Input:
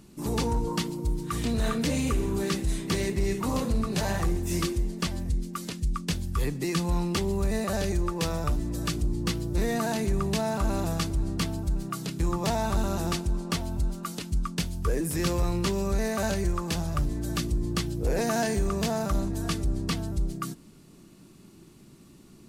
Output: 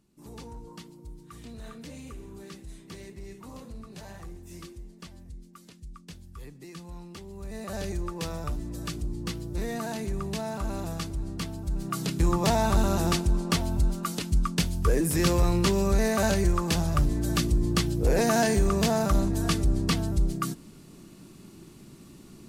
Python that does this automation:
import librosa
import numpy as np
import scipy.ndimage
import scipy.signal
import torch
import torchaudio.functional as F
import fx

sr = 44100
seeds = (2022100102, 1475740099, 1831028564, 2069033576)

y = fx.gain(x, sr, db=fx.line((7.29, -16.0), (7.8, -5.0), (11.59, -5.0), (12.0, 3.5)))